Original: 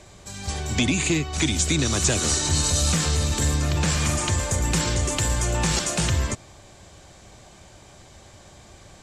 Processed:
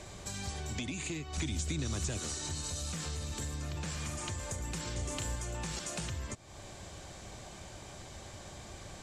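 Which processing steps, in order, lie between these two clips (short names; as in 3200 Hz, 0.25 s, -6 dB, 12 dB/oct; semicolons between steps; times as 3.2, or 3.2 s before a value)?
compressor 6:1, threshold -37 dBFS, peak gain reduction 18.5 dB; 1.37–2.18 low shelf 210 Hz +7.5 dB; 4.93–5.36 doubler 34 ms -6.5 dB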